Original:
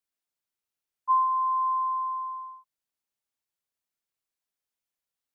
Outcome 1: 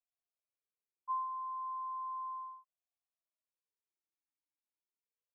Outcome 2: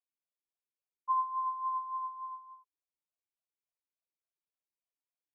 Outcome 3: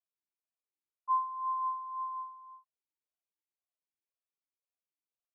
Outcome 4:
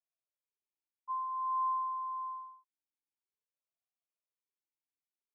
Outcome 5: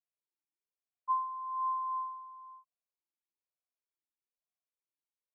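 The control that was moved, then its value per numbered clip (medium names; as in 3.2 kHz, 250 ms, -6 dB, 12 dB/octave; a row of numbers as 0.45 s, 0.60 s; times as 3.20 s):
talking filter, rate: 0.34 Hz, 3.5 Hz, 1.9 Hz, 0.51 Hz, 1.1 Hz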